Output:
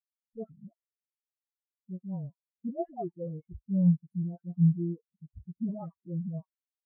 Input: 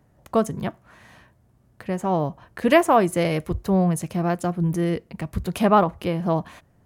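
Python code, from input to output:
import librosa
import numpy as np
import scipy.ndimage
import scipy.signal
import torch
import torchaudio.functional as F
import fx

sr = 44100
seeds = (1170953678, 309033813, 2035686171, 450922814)

y = fx.tube_stage(x, sr, drive_db=25.0, bias=0.55)
y = fx.dispersion(y, sr, late='highs', ms=142.0, hz=1100.0)
y = fx.spectral_expand(y, sr, expansion=4.0)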